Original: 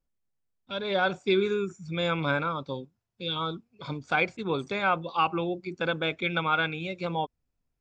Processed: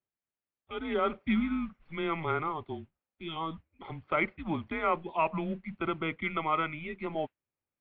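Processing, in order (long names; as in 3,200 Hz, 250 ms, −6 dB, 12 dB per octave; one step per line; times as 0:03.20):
noise that follows the level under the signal 20 dB
single-sideband voice off tune −160 Hz 260–3,000 Hz
0:05.79–0:06.96: notch filter 1,700 Hz, Q 9.3
level −3 dB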